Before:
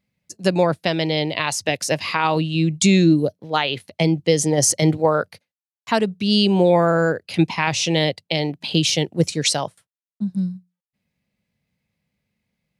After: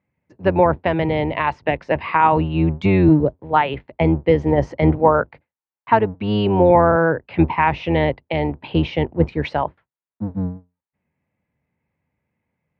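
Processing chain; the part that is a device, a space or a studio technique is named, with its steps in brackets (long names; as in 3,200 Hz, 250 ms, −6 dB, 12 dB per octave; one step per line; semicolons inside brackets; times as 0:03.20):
sub-octave bass pedal (sub-octave generator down 1 octave, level −1 dB; loudspeaker in its box 85–2,200 Hz, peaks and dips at 100 Hz −6 dB, 200 Hz −6 dB, 920 Hz +7 dB)
level +2 dB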